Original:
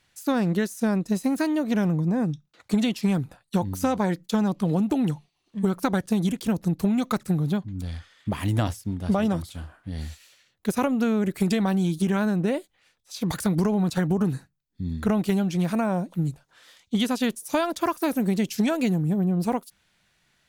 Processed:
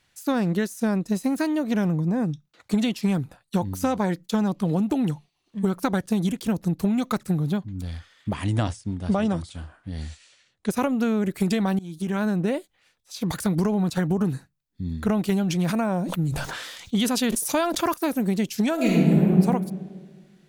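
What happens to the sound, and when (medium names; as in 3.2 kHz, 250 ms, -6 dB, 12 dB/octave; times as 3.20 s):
8.33–10.71 s: brick-wall FIR low-pass 10 kHz
11.79–12.26 s: fade in, from -22 dB
15.22–17.94 s: decay stretcher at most 35 dB/s
18.74–19.31 s: reverb throw, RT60 1.7 s, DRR -5 dB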